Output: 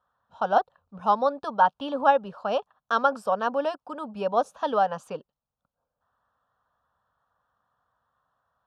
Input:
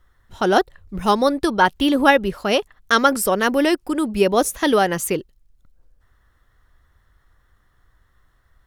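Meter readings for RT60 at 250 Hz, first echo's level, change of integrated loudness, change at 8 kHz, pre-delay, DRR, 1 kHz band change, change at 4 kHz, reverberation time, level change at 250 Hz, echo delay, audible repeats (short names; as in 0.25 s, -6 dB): none, none, -7.0 dB, under -25 dB, none, none, -3.0 dB, -15.5 dB, none, -16.0 dB, none, none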